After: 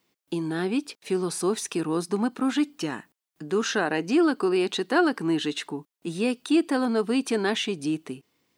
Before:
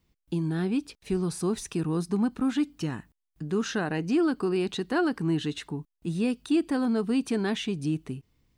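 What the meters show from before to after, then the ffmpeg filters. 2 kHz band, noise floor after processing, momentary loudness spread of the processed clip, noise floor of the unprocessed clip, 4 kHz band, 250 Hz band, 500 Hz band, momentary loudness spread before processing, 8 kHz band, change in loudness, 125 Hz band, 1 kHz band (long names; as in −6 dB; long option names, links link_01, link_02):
+6.0 dB, below −85 dBFS, 11 LU, −82 dBFS, +6.0 dB, +1.5 dB, +4.5 dB, 9 LU, +6.0 dB, +2.5 dB, −5.5 dB, +6.0 dB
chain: -af "highpass=320,volume=6dB"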